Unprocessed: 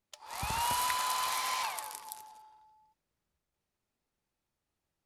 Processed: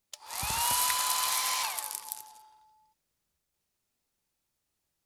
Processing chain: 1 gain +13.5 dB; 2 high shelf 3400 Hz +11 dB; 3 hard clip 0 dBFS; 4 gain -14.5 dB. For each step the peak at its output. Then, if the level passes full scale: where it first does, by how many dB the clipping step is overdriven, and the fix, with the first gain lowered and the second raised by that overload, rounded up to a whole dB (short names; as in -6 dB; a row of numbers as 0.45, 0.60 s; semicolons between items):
-2.0, +7.0, 0.0, -14.5 dBFS; step 2, 7.0 dB; step 1 +6.5 dB, step 4 -7.5 dB